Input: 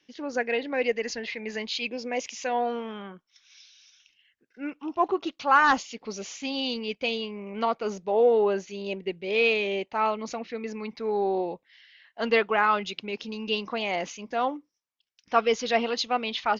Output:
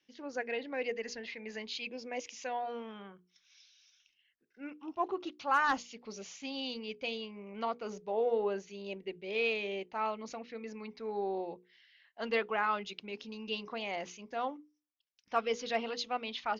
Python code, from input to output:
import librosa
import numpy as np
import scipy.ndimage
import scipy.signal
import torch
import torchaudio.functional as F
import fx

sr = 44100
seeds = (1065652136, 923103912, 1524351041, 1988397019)

y = np.clip(x, -10.0 ** (-10.0 / 20.0), 10.0 ** (-10.0 / 20.0))
y = fx.hum_notches(y, sr, base_hz=60, count=8)
y = y * 10.0 ** (-9.0 / 20.0)